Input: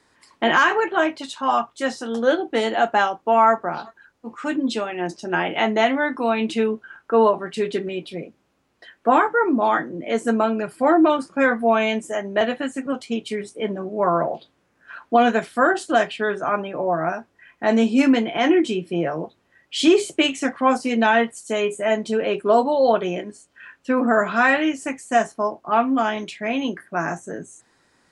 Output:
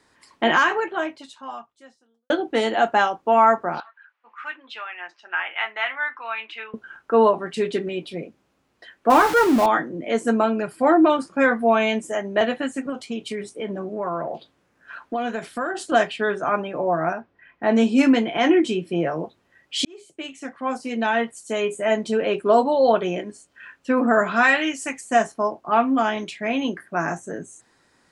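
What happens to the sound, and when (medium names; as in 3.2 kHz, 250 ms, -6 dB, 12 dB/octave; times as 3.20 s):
0.46–2.30 s: fade out quadratic
3.80–6.74 s: Butterworth band-pass 1.8 kHz, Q 1
9.10–9.66 s: jump at every zero crossing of -21.5 dBFS
12.89–15.92 s: compression 3:1, threshold -25 dBFS
17.13–17.76 s: distance through air 240 m
19.85–21.98 s: fade in
24.43–25.01 s: tilt shelf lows -5 dB, about 1.4 kHz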